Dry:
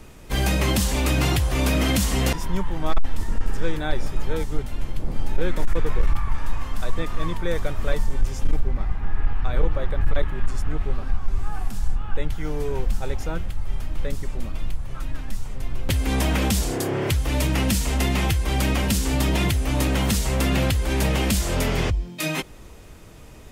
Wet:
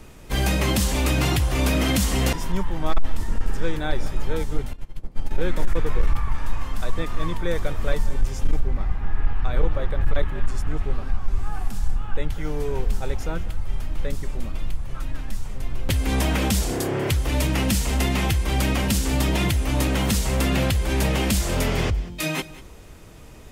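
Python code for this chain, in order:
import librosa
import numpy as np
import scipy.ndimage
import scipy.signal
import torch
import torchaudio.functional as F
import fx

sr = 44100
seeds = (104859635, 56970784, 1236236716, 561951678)

y = x + 10.0 ** (-18.0 / 20.0) * np.pad(x, (int(192 * sr / 1000.0), 0))[:len(x)]
y = fx.upward_expand(y, sr, threshold_db=-25.0, expansion=2.5, at=(4.73, 5.31))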